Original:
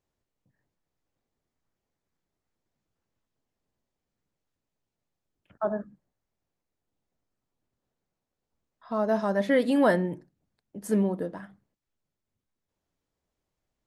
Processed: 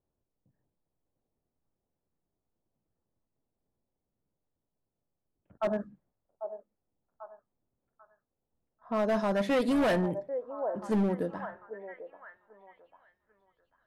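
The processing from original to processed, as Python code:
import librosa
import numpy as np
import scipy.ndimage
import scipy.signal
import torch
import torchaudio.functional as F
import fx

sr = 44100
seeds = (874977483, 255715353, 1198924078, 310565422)

y = fx.echo_stepped(x, sr, ms=793, hz=640.0, octaves=0.7, feedback_pct=70, wet_db=-9.0)
y = np.clip(10.0 ** (23.0 / 20.0) * y, -1.0, 1.0) / 10.0 ** (23.0 / 20.0)
y = fx.env_lowpass(y, sr, base_hz=840.0, full_db=-27.0)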